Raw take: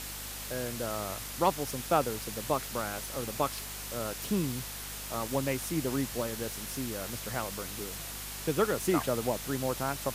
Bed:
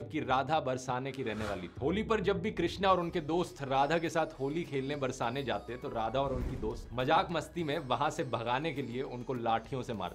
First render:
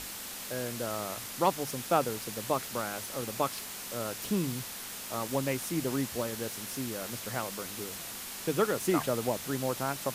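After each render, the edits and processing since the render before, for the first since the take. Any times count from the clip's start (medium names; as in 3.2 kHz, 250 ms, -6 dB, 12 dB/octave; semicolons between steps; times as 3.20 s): hum notches 50/100/150 Hz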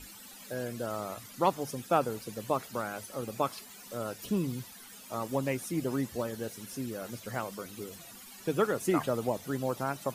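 noise reduction 15 dB, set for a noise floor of -42 dBFS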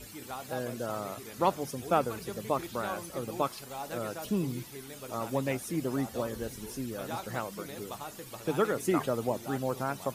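add bed -11 dB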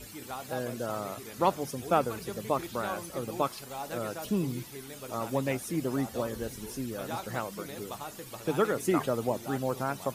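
trim +1 dB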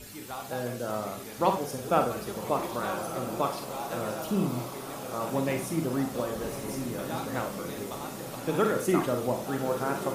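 echo that smears into a reverb 1186 ms, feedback 63%, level -10 dB; Schroeder reverb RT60 0.35 s, combs from 33 ms, DRR 4.5 dB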